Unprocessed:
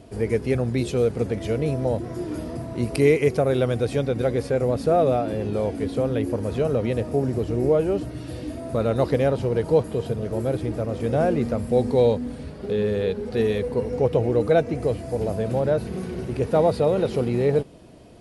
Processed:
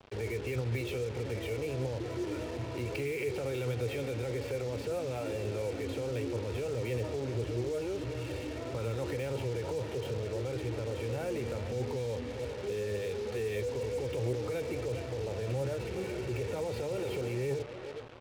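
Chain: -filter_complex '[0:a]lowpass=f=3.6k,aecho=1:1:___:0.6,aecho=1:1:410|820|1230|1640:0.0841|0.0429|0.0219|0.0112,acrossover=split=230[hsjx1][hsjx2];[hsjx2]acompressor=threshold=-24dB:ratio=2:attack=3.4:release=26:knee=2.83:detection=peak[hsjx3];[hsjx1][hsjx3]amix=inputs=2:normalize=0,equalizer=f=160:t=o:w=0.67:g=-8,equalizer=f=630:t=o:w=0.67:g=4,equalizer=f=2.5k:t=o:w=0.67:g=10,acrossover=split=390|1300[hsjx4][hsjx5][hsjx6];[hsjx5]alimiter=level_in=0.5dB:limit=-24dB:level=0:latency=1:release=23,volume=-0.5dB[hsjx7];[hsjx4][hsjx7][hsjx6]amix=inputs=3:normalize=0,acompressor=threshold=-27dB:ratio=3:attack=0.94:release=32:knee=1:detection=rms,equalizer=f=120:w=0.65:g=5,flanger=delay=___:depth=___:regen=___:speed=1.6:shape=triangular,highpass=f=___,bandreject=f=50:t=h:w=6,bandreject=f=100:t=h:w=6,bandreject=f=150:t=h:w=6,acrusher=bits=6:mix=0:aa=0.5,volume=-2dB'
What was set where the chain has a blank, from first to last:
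2.2, 7, 4.7, 70, 80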